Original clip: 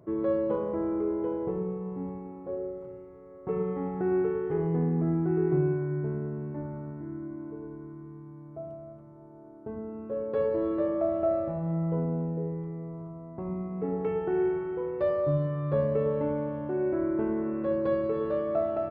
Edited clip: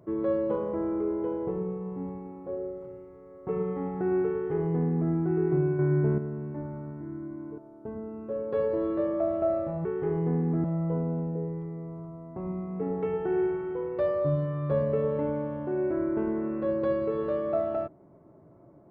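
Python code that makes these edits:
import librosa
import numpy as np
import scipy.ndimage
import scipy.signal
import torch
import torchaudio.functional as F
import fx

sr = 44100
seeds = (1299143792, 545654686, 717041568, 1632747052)

y = fx.edit(x, sr, fx.duplicate(start_s=4.33, length_s=0.79, to_s=11.66),
    fx.clip_gain(start_s=5.79, length_s=0.39, db=6.5),
    fx.cut(start_s=7.58, length_s=1.81), tone=tone)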